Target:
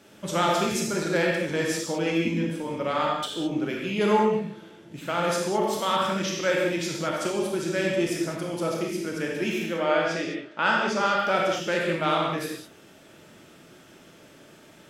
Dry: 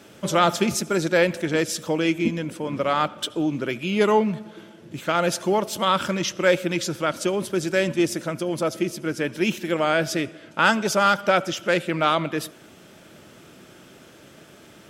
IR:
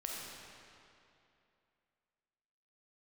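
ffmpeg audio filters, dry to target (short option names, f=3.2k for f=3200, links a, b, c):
-filter_complex "[0:a]asettb=1/sr,asplit=3[a][b][c];[a]atrim=end=9.664[d];[b]atrim=start=9.66:end=11.2,asetpts=PTS-STARTPTS,afade=t=in:d=0.004:c=qsin,afade=t=out:st=1.536:d=0.004:c=qsin,highpass=190,lowpass=4.8k[e];[c]atrim=start=11.196[f];[d][e]acrossfade=d=0.004:c1=hsin:c2=qsin[g];[g][f]acrossfade=d=0.004:c1=qsin:c2=hsin[h];[1:a]atrim=start_sample=2205,afade=t=out:st=0.36:d=0.01,atrim=end_sample=16317,asetrate=61740,aresample=44100[i];[h][i]afir=irnorm=-1:irlink=0"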